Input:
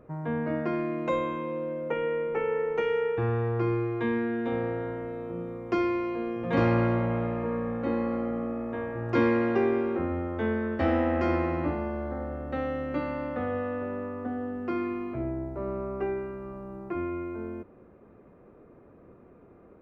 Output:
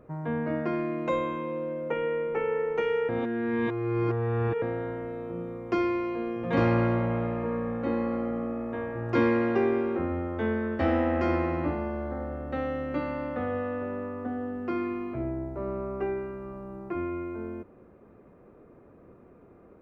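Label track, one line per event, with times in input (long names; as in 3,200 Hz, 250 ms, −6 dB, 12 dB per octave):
3.090000	4.620000	reverse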